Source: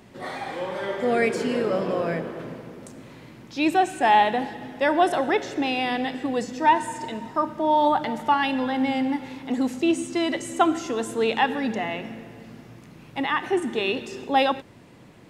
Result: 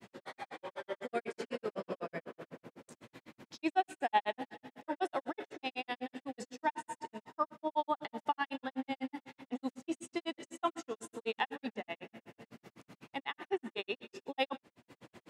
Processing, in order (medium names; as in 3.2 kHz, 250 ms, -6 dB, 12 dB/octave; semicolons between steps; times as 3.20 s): high-pass 290 Hz 6 dB/octave; upward compressor, threshold -35 dBFS; granulator 83 ms, grains 8 per s, spray 25 ms, pitch spread up and down by 0 st; trim -7.5 dB